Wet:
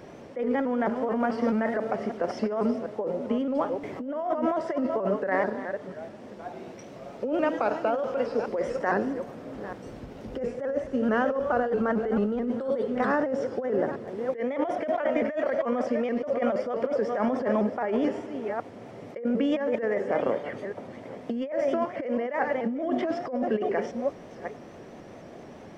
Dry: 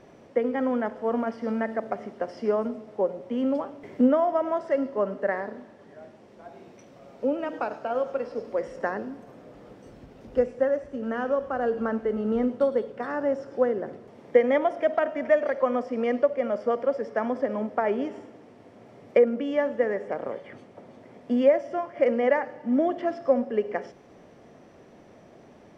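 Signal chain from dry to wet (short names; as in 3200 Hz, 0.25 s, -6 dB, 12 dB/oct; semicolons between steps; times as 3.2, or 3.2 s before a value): reverse delay 0.423 s, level -13 dB; negative-ratio compressor -29 dBFS, ratio -1; shaped vibrato saw up 4.6 Hz, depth 100 cents; gain +2.5 dB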